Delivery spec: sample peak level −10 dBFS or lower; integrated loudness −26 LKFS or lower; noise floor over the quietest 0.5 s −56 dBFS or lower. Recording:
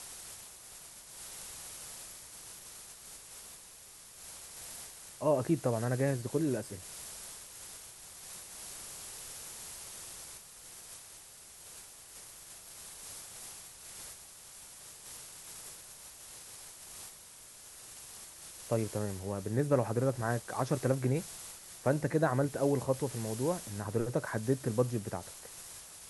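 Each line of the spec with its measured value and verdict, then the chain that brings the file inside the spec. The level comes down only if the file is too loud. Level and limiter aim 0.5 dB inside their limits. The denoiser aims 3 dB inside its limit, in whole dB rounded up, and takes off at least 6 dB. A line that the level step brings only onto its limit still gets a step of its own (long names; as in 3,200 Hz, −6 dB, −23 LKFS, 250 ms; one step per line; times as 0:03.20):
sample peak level −14.0 dBFS: in spec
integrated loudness −36.5 LKFS: in spec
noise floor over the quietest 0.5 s −53 dBFS: out of spec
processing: broadband denoise 6 dB, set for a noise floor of −53 dBFS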